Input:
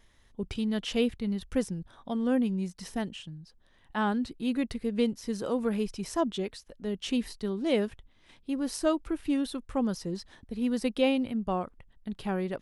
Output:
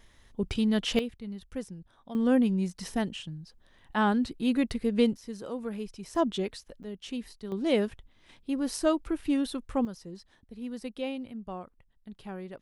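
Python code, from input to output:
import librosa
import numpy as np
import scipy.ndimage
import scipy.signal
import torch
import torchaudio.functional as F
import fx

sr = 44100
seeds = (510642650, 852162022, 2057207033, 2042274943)

y = fx.gain(x, sr, db=fx.steps((0.0, 4.0), (0.99, -8.0), (2.15, 3.0), (5.17, -6.5), (6.15, 1.5), (6.83, -7.0), (7.52, 1.0), (9.85, -9.0)))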